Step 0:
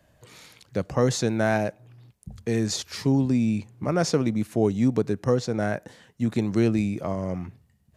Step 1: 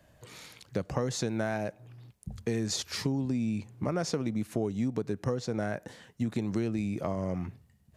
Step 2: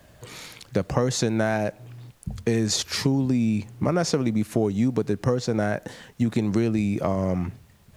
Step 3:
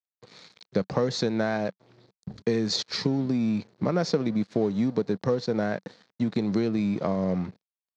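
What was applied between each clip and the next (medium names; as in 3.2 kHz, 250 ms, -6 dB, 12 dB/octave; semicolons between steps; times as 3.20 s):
compression, threshold -27 dBFS, peak gain reduction 11 dB
added noise pink -69 dBFS; trim +8 dB
crossover distortion -41.5 dBFS; cabinet simulation 130–5600 Hz, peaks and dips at 190 Hz +5 dB, 470 Hz +4 dB, 2.8 kHz -5 dB, 4.2 kHz +7 dB; trim -3 dB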